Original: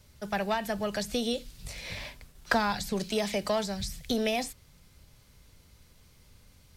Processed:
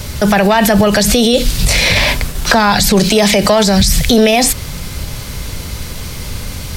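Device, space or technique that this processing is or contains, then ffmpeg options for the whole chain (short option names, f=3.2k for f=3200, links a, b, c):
loud club master: -af "acompressor=threshold=-34dB:ratio=2,asoftclip=type=hard:threshold=-23.5dB,alimiter=level_in=35dB:limit=-1dB:release=50:level=0:latency=1,volume=-1dB"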